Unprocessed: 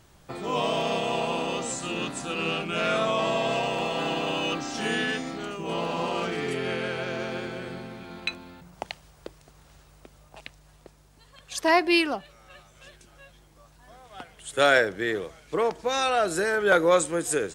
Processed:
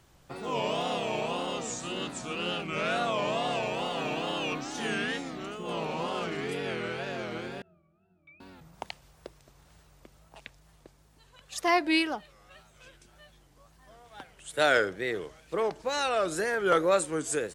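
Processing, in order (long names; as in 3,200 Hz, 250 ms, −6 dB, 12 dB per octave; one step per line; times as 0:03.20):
0:07.62–0:08.40: resonances in every octave D#, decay 0.54 s
tape wow and flutter 140 cents
level −4 dB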